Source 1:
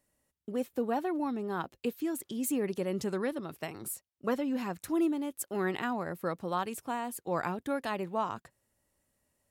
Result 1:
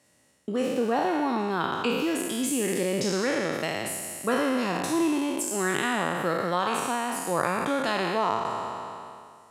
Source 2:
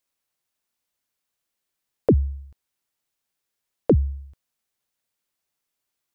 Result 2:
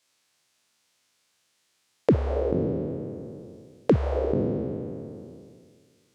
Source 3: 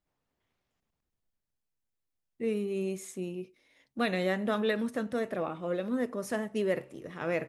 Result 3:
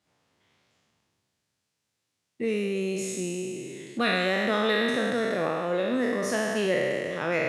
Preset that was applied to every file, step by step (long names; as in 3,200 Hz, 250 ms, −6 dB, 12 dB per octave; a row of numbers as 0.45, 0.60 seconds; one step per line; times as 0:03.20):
peak hold with a decay on every bin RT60 1.90 s
high-pass filter 86 Hz 24 dB per octave
high-shelf EQ 2,800 Hz +9.5 dB
downward compressor 1.5 to 1, threshold −45 dBFS
high-frequency loss of the air 68 metres
loudness normalisation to −27 LKFS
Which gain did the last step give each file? +10.5, +8.0, +9.0 decibels